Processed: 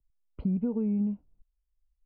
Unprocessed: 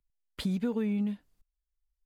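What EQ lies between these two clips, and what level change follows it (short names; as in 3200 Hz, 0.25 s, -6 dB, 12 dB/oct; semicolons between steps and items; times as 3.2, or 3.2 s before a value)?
running mean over 25 samples; air absorption 390 m; low shelf 150 Hz +7.5 dB; 0.0 dB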